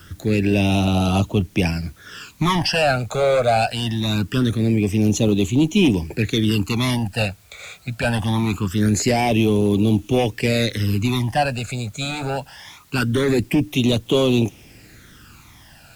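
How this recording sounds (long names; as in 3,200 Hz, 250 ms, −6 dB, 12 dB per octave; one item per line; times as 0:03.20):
phaser sweep stages 12, 0.23 Hz, lowest notch 300–1,700 Hz
a quantiser's noise floor 10 bits, dither triangular
AAC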